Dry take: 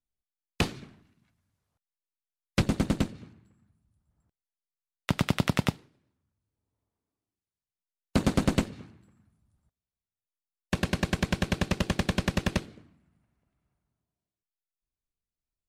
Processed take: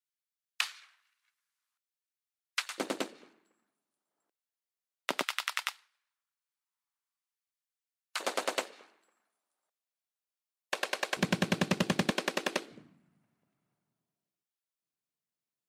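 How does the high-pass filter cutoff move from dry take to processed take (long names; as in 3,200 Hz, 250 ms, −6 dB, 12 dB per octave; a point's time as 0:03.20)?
high-pass filter 24 dB per octave
1,200 Hz
from 0:02.78 350 Hz
from 0:05.23 1,100 Hz
from 0:08.20 480 Hz
from 0:11.17 150 Hz
from 0:12.10 310 Hz
from 0:12.71 140 Hz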